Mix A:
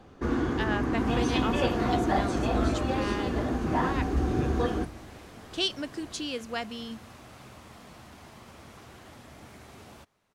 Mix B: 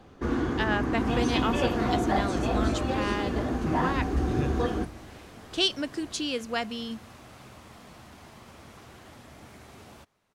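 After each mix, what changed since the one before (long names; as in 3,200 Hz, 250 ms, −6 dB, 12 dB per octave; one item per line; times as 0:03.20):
speech +3.5 dB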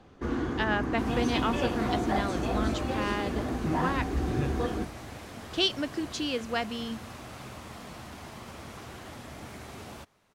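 speech: add high-frequency loss of the air 66 metres
first sound −3.0 dB
second sound +5.5 dB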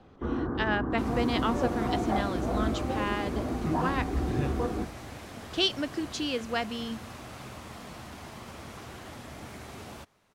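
first sound: add Butterworth low-pass 1,500 Hz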